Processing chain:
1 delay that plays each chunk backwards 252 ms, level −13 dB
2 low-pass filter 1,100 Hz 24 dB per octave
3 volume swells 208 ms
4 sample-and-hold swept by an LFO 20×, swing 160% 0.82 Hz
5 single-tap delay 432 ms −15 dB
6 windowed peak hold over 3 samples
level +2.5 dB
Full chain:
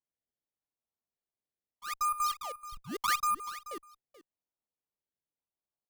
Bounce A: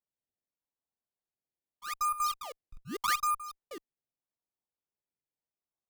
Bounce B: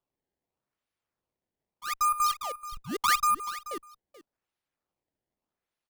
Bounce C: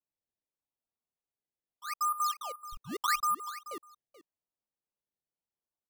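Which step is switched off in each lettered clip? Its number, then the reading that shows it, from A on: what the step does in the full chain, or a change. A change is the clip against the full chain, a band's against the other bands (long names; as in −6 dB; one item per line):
5, change in momentary loudness spread +4 LU
2, change in integrated loudness +5.0 LU
6, distortion level −7 dB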